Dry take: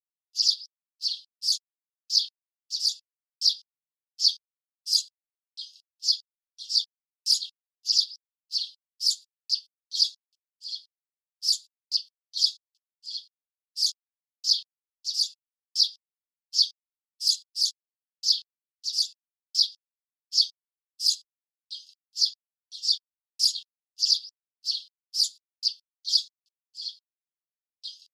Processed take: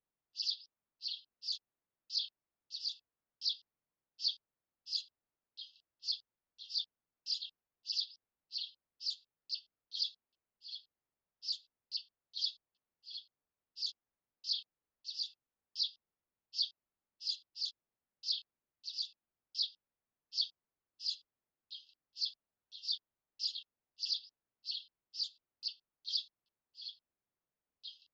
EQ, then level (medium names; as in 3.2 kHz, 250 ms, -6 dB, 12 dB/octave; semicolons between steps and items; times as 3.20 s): distance through air 130 m; tape spacing loss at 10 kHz 45 dB; +12.5 dB